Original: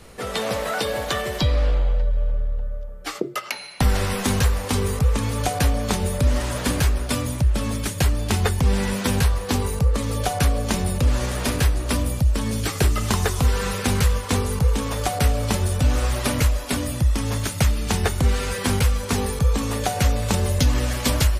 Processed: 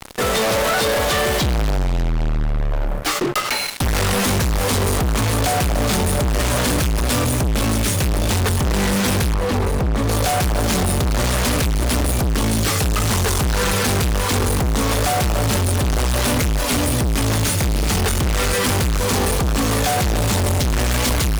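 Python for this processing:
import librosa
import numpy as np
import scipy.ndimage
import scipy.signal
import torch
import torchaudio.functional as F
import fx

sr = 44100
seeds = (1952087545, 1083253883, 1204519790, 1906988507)

y = fx.fuzz(x, sr, gain_db=41.0, gate_db=-39.0)
y = fx.high_shelf(y, sr, hz=3500.0, db=-12.0, at=(9.34, 10.09))
y = F.gain(torch.from_numpy(y), -3.5).numpy()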